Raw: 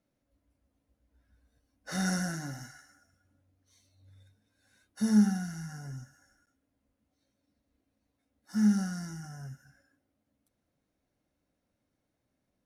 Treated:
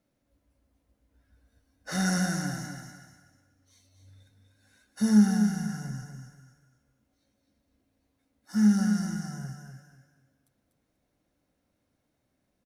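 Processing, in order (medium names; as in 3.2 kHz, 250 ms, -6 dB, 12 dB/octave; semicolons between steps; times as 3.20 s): feedback delay 244 ms, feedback 29%, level -6.5 dB; trim +3.5 dB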